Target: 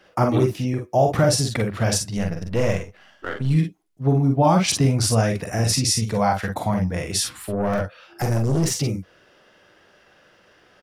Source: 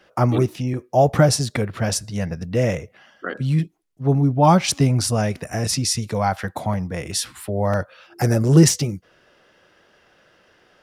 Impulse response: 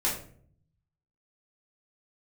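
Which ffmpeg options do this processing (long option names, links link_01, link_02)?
-filter_complex "[0:a]asettb=1/sr,asplit=3[link_01][link_02][link_03];[link_01]atrim=end=2.174[link_04];[link_02]atrim=start=2.17:end=3.51,asetpts=PTS-STARTPTS,afade=type=in:duration=0.004:curve=qsin,afade=type=out:start_time=1.336:duration=0.004:curve=qsin,aeval=exprs='if(lt(val(0),0),0.447*val(0),val(0))':channel_layout=same[link_05];[link_03]atrim=start=3.506[link_06];[link_04][link_05]acrossfade=duration=0.004:curve1=hsin:curve2=qsin[link_07];[link_07][link_06]acrossfade=duration=0.004:curve1=qsin:curve2=hsin,alimiter=limit=-9dB:level=0:latency=1:release=203,asplit=2[link_08][link_09];[link_09]aecho=0:1:44|54:0.501|0.398[link_10];[link_08][link_10]amix=inputs=2:normalize=0,asettb=1/sr,asplit=3[link_11][link_12][link_13];[link_11]atrim=end=7.374[link_14];[link_12]atrim=start=7.37:end=8.72,asetpts=PTS-STARTPTS,afade=type=in:duration=0.004:curve=qsin,afade=type=out:start_time=1.346:duration=0.004:curve=qsin,aeval=exprs='(tanh(6.31*val(0)+0.4)-tanh(0.4))/6.31':channel_layout=same[link_15];[link_13]atrim=start=8.716[link_16];[link_14][link_15]acrossfade=duration=0.004:curve1=hsin:curve2=qsin[link_17];[link_17][link_16]acrossfade=duration=0.004:curve1=qsin:curve2=hsin"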